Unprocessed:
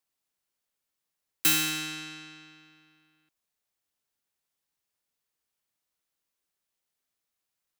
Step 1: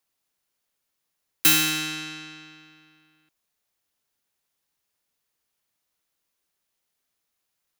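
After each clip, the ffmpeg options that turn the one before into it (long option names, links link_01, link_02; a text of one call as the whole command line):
ffmpeg -i in.wav -af "bandreject=frequency=8000:width=15,volume=5.5dB" out.wav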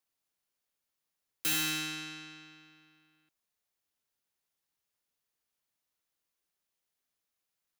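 ffmpeg -i in.wav -af "volume=20.5dB,asoftclip=hard,volume=-20.5dB,volume=-7dB" out.wav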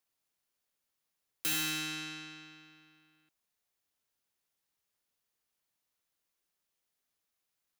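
ffmpeg -i in.wav -af "acompressor=threshold=-37dB:ratio=1.5,volume=1dB" out.wav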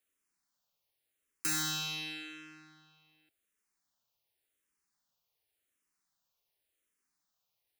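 ffmpeg -i in.wav -filter_complex "[0:a]asplit=2[link_01][link_02];[link_02]afreqshift=-0.89[link_03];[link_01][link_03]amix=inputs=2:normalize=1,volume=3.5dB" out.wav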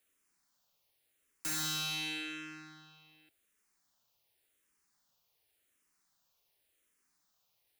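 ffmpeg -i in.wav -af "asoftclip=type=tanh:threshold=-39.5dB,volume=6dB" out.wav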